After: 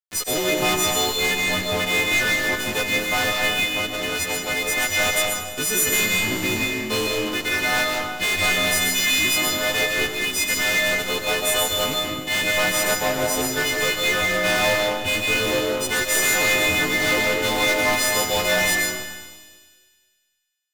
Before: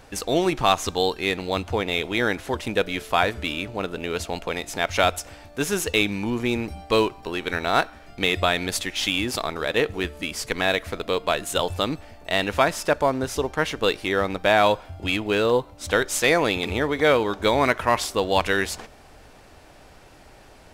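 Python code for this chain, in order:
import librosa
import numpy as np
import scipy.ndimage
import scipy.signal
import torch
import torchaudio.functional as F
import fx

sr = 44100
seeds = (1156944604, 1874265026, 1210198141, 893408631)

p1 = fx.freq_snap(x, sr, grid_st=3)
p2 = fx.graphic_eq_31(p1, sr, hz=(100, 1000, 2000), db=(5, -5, 10))
p3 = fx.cheby_harmonics(p2, sr, harmonics=(4,), levels_db=(-12,), full_scale_db=2.0)
p4 = fx.fuzz(p3, sr, gain_db=24.0, gate_db=-28.0)
p5 = p4 + fx.echo_wet_highpass(p4, sr, ms=100, feedback_pct=72, hz=3100.0, wet_db=-12.5, dry=0)
p6 = fx.rev_freeverb(p5, sr, rt60_s=1.4, hf_ratio=0.45, predelay_ms=110, drr_db=-0.5)
y = F.gain(torch.from_numpy(p6), -7.0).numpy()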